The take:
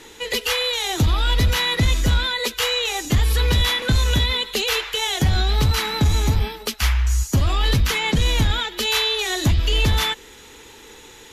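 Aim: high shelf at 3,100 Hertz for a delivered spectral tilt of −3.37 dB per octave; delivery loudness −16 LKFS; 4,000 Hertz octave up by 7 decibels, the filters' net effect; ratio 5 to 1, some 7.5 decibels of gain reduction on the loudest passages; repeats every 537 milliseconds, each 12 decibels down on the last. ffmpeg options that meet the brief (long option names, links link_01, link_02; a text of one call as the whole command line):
ffmpeg -i in.wav -af "highshelf=frequency=3100:gain=5.5,equalizer=frequency=4000:width_type=o:gain=4.5,acompressor=threshold=-21dB:ratio=5,aecho=1:1:537|1074|1611:0.251|0.0628|0.0157,volume=6.5dB" out.wav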